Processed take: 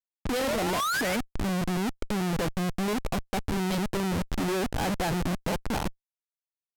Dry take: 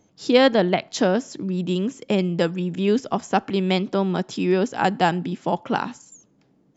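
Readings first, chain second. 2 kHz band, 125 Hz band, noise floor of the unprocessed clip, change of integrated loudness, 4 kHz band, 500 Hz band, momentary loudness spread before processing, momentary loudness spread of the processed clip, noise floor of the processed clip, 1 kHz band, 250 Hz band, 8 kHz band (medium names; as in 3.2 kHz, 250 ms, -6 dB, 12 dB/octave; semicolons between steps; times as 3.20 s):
-4.0 dB, -4.5 dB, -62 dBFS, -7.0 dB, -5.5 dB, -10.0 dB, 9 LU, 5 LU, under -85 dBFS, -7.0 dB, -7.0 dB, no reading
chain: painted sound rise, 0.39–1.17 s, 460–2400 Hz -23 dBFS; Schmitt trigger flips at -26.5 dBFS; level-controlled noise filter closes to 2.8 kHz, open at -23.5 dBFS; trim -5 dB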